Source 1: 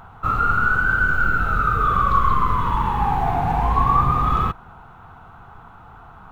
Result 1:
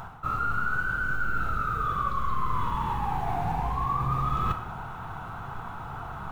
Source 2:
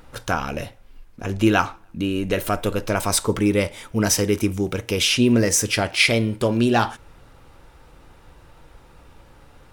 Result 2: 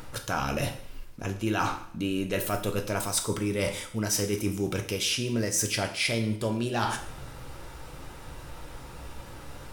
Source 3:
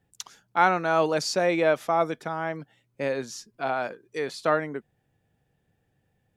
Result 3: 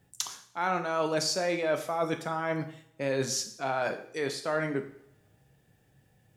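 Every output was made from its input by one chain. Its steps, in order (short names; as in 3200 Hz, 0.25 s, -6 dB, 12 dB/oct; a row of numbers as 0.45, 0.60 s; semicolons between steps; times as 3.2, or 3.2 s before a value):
tone controls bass 0 dB, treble +5 dB; reverse; compressor 5:1, threshold -33 dBFS; reverse; two-slope reverb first 0.57 s, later 1.7 s, from -26 dB, DRR 5.5 dB; gain +5 dB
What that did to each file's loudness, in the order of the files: -10.5, -8.0, -4.5 LU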